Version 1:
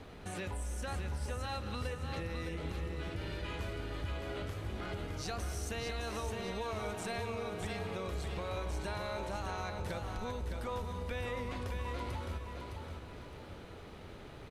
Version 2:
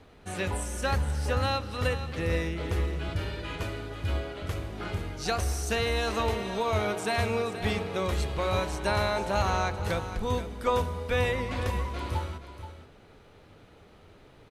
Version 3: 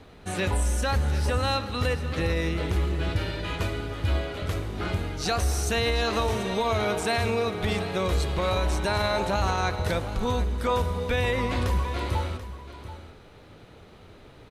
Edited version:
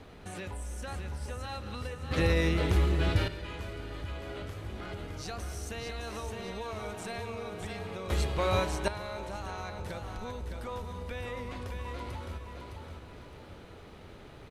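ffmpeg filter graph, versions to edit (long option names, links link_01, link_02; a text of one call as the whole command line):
ffmpeg -i take0.wav -i take1.wav -i take2.wav -filter_complex "[0:a]asplit=3[link_01][link_02][link_03];[link_01]atrim=end=2.112[link_04];[2:a]atrim=start=2.108:end=3.282[link_05];[link_02]atrim=start=3.278:end=8.102[link_06];[1:a]atrim=start=8.098:end=8.882[link_07];[link_03]atrim=start=8.878[link_08];[link_04][link_05]acrossfade=duration=0.004:curve1=hsin:curve2=hsin[link_09];[link_09][link_06]acrossfade=duration=0.004:curve1=hsin:curve2=hsin[link_10];[link_10][link_07]acrossfade=duration=0.004:curve1=hsin:curve2=hsin[link_11];[link_11][link_08]acrossfade=duration=0.004:curve1=hsin:curve2=hsin" out.wav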